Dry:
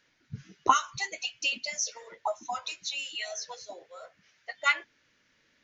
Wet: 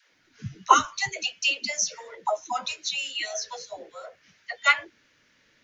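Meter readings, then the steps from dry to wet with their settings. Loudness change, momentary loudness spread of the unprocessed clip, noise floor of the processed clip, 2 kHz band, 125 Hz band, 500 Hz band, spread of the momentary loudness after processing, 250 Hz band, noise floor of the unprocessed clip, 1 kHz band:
+5.0 dB, 20 LU, -65 dBFS, +5.0 dB, no reading, +5.0 dB, 20 LU, +5.0 dB, -69 dBFS, +5.0 dB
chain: phase dispersion lows, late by 138 ms, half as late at 330 Hz; trim +5 dB

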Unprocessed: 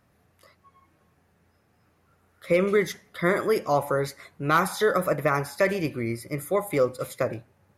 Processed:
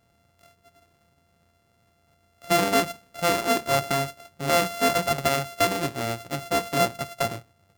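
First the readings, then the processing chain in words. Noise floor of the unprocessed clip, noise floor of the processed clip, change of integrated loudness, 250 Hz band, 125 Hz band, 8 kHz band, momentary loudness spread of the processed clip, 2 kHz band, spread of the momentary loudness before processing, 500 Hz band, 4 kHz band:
-66 dBFS, -66 dBFS, +1.0 dB, -1.0 dB, -1.0 dB, +8.5 dB, 9 LU, +0.5 dB, 9 LU, -2.0 dB, +10.5 dB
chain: sorted samples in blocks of 64 samples

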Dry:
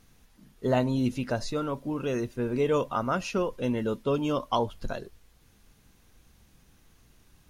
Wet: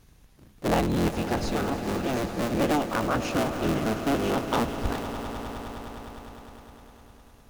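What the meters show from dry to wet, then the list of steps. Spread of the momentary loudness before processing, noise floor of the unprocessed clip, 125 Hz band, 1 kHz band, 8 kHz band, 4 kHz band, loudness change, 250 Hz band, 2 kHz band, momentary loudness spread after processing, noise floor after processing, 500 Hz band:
7 LU, -62 dBFS, +2.0 dB, +3.5 dB, +7.0 dB, +4.5 dB, +1.5 dB, +3.0 dB, +6.0 dB, 16 LU, -55 dBFS, 0.0 dB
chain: cycle switcher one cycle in 3, inverted; bass shelf 160 Hz +4 dB; on a send: echo with a slow build-up 102 ms, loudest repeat 5, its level -14.5 dB

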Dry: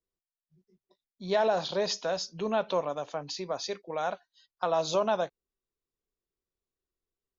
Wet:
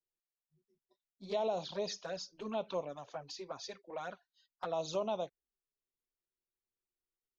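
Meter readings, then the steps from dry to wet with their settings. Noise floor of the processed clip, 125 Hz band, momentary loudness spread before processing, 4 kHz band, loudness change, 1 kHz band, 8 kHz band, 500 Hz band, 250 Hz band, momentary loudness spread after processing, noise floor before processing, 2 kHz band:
under -85 dBFS, -8.5 dB, 9 LU, -9.5 dB, -9.0 dB, -10.0 dB, no reading, -8.5 dB, -8.0 dB, 10 LU, under -85 dBFS, -12.0 dB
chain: touch-sensitive flanger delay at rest 8.4 ms, full sweep at -24.5 dBFS; trim -6.5 dB

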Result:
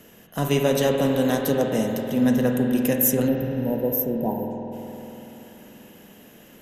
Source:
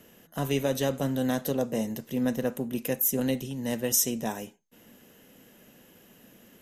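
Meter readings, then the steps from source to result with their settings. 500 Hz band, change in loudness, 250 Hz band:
+7.5 dB, +6.0 dB, +7.5 dB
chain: time-frequency box 3.28–4.51 s, 1–12 kHz -28 dB; spring tank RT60 3.7 s, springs 48 ms, chirp 25 ms, DRR 2 dB; trim +5 dB

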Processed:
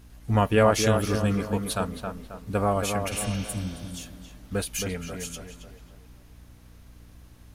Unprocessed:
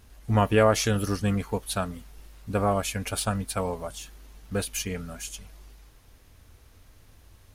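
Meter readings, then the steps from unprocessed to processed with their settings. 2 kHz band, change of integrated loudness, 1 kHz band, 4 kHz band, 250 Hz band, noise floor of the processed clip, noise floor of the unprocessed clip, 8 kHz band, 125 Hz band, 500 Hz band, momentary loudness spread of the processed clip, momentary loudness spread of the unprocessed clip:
+0.5 dB, +0.5 dB, +0.5 dB, 0.0 dB, +1.5 dB, -51 dBFS, -56 dBFS, 0.0 dB, +1.0 dB, +1.0 dB, 19 LU, 17 LU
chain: spectral replace 3.14–3.88 s, 360–6500 Hz both; tape echo 271 ms, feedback 47%, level -4 dB, low-pass 1.9 kHz; hum 60 Hz, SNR 24 dB

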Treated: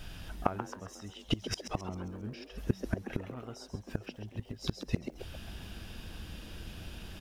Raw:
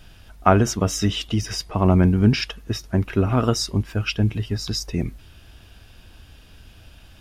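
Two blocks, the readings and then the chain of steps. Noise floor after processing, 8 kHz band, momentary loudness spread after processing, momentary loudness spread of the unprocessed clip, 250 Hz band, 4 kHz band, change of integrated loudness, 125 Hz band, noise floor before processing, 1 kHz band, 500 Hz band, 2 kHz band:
-54 dBFS, -18.5 dB, 11 LU, 10 LU, -17.0 dB, -14.5 dB, -18.0 dB, -18.0 dB, -48 dBFS, -15.5 dB, -16.5 dB, -14.5 dB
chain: inverted gate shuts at -17 dBFS, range -27 dB; frequency-shifting echo 134 ms, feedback 45%, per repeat +140 Hz, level -10 dB; crackle 500 per s -61 dBFS; trim +1.5 dB

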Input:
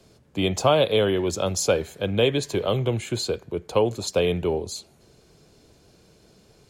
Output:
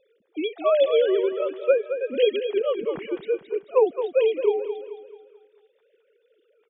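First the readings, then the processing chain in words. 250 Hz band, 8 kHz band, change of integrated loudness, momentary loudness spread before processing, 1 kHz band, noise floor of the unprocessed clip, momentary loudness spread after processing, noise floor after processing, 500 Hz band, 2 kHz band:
-5.5 dB, under -40 dB, +0.5 dB, 9 LU, -4.5 dB, -57 dBFS, 11 LU, -67 dBFS, +2.5 dB, -4.5 dB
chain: formants replaced by sine waves; feedback delay 218 ms, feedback 43%, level -9.5 dB

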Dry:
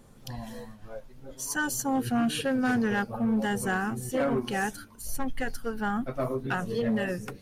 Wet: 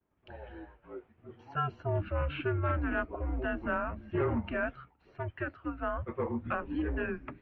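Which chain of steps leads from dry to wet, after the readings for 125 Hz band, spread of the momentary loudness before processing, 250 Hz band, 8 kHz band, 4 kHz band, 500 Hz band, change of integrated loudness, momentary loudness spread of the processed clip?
+1.0 dB, 16 LU, -9.0 dB, under -40 dB, -13.0 dB, -3.5 dB, -5.0 dB, 17 LU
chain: expander -43 dBFS; mistuned SSB -160 Hz 250–2800 Hz; trim -2.5 dB

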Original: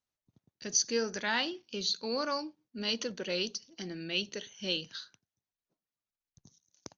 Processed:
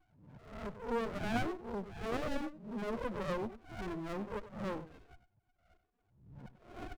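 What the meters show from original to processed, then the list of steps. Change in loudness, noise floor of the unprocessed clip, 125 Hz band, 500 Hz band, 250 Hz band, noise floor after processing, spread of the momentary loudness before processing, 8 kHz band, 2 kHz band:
-6.5 dB, under -85 dBFS, +4.0 dB, -2.5 dB, -0.5 dB, -78 dBFS, 14 LU, no reading, -7.5 dB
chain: reverse spectral sustain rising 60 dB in 0.47 s; reverb removal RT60 0.74 s; bass shelf 330 Hz +6 dB; in parallel at +1 dB: compression, threshold -43 dBFS, peak gain reduction 19.5 dB; on the sum: cascade formant filter a; loudest bins only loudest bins 8; power-law waveshaper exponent 0.7; delay 96 ms -13.5 dB; sliding maximum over 33 samples; trim +14 dB

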